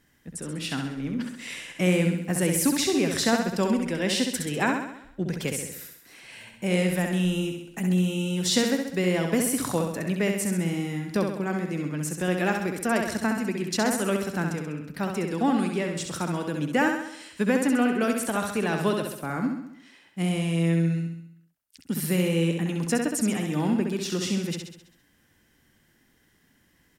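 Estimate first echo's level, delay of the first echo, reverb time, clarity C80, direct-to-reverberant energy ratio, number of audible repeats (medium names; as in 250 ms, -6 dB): -5.0 dB, 66 ms, no reverb, no reverb, no reverb, 6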